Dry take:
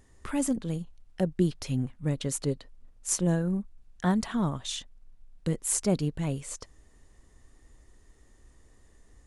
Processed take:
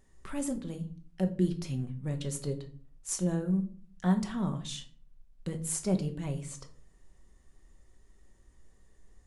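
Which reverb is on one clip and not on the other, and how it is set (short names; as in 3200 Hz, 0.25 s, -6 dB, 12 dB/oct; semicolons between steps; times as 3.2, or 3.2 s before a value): shoebox room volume 380 m³, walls furnished, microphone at 1.1 m; gain -6.5 dB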